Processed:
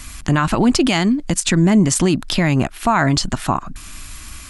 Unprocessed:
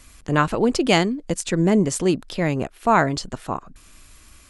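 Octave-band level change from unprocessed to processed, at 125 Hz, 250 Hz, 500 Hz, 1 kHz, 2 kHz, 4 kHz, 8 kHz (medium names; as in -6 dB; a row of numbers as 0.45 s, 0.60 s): +7.0 dB, +5.5 dB, -0.5 dB, +2.0 dB, +3.5 dB, +6.0 dB, +8.5 dB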